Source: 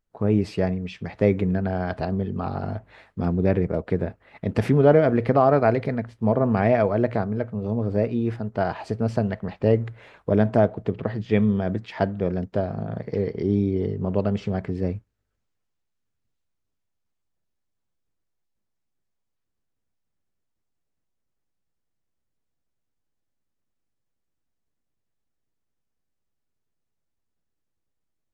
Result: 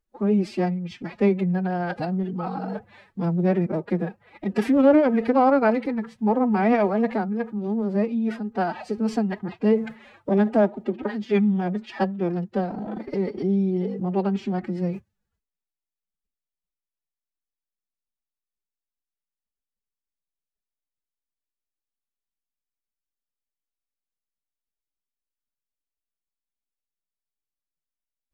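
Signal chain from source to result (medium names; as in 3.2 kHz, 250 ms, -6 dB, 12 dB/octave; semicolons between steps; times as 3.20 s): formant-preserving pitch shift +11.5 st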